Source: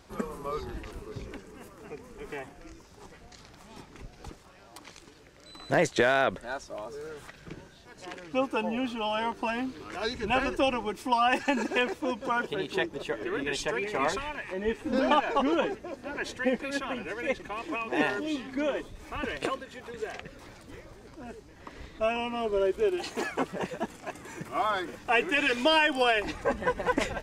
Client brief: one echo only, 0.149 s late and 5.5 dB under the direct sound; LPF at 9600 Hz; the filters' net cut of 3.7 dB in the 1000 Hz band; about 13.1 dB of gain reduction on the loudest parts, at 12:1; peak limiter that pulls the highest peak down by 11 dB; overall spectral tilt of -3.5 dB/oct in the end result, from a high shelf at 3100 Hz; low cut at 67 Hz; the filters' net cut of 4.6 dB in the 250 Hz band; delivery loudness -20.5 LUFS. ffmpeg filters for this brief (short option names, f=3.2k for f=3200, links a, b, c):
-af "highpass=67,lowpass=9.6k,equalizer=f=250:t=o:g=-5.5,equalizer=f=1k:t=o:g=-5,highshelf=f=3.1k:g=3.5,acompressor=threshold=-34dB:ratio=12,alimiter=level_in=6dB:limit=-24dB:level=0:latency=1,volume=-6dB,aecho=1:1:149:0.531,volume=20dB"